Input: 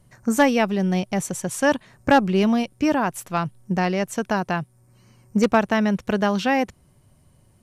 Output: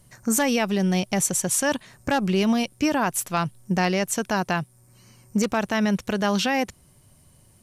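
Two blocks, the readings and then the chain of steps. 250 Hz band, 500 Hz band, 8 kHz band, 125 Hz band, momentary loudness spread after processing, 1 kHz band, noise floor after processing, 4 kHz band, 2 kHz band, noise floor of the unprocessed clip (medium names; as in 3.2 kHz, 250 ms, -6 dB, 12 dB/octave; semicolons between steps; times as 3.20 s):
-2.5 dB, -3.5 dB, +8.0 dB, -1.0 dB, 6 LU, -3.5 dB, -57 dBFS, +2.5 dB, -2.0 dB, -58 dBFS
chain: peak limiter -14 dBFS, peak gain reduction 8.5 dB; treble shelf 3 kHz +9.5 dB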